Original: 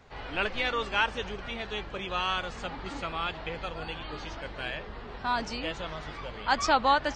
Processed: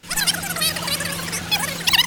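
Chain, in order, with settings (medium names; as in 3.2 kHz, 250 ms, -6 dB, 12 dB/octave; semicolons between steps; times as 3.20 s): rattle on loud lows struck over -39 dBFS, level -34 dBFS; level rider gain up to 11 dB; wide varispeed 3.46×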